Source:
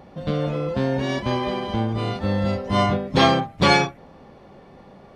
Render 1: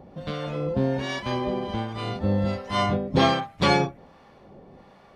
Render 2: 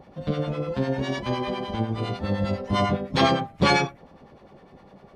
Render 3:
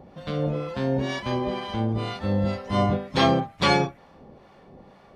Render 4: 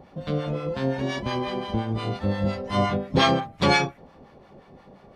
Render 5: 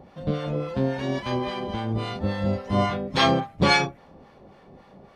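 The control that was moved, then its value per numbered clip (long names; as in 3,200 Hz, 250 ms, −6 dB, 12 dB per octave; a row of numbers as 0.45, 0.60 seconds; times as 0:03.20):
two-band tremolo in antiphase, speed: 1.3, 9.9, 2.1, 5.7, 3.6 Hertz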